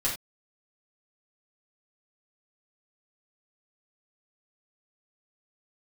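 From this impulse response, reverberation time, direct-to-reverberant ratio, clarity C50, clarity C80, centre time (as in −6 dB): non-exponential decay, −6.5 dB, 5.5 dB, 12.0 dB, 28 ms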